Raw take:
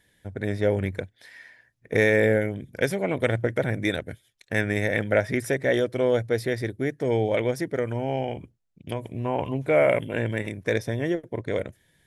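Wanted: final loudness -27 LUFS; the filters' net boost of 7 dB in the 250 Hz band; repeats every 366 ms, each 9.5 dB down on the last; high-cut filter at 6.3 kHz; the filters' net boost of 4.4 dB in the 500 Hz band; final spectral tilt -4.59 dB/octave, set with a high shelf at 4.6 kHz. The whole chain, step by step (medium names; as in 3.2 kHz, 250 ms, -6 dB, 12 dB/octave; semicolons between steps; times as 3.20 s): low-pass 6.3 kHz; peaking EQ 250 Hz +8 dB; peaking EQ 500 Hz +3 dB; treble shelf 4.6 kHz +6 dB; feedback delay 366 ms, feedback 33%, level -9.5 dB; trim -6 dB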